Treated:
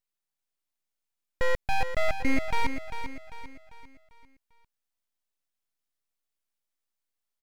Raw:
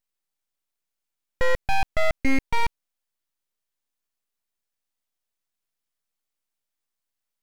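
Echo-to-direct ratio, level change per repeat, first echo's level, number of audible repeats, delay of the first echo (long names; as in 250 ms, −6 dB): −8.0 dB, −7.5 dB, −9.0 dB, 4, 396 ms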